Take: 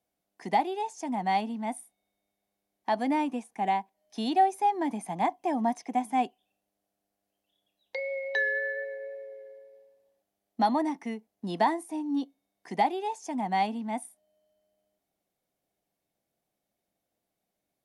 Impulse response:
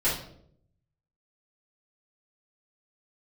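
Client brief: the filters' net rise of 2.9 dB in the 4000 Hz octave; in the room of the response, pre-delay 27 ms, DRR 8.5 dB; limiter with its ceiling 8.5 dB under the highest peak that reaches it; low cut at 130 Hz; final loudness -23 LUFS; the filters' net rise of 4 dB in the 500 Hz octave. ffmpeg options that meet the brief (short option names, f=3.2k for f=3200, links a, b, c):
-filter_complex "[0:a]highpass=130,equalizer=f=500:t=o:g=5.5,equalizer=f=4k:t=o:g=3.5,alimiter=limit=-19dB:level=0:latency=1,asplit=2[a][b];[1:a]atrim=start_sample=2205,adelay=27[c];[b][c]afir=irnorm=-1:irlink=0,volume=-19.5dB[d];[a][d]amix=inputs=2:normalize=0,volume=6.5dB"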